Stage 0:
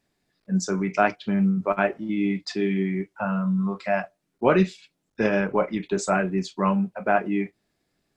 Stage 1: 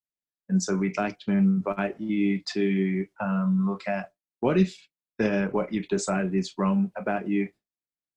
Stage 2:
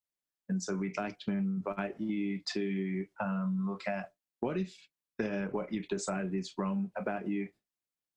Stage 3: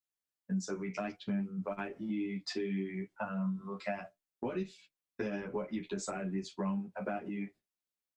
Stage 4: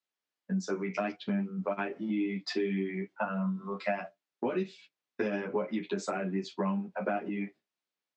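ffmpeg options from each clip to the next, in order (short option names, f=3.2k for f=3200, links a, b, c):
-filter_complex "[0:a]acrossover=split=390|3000[a][b][c];[b]acompressor=threshold=-28dB:ratio=6[d];[a][d][c]amix=inputs=3:normalize=0,agate=range=-33dB:threshold=-37dB:ratio=3:detection=peak"
-af "acompressor=threshold=-31dB:ratio=6"
-filter_complex "[0:a]asplit=2[a][b];[b]adelay=10.8,afreqshift=2.8[c];[a][c]amix=inputs=2:normalize=1"
-af "highpass=200,lowpass=4.6k,volume=6dB"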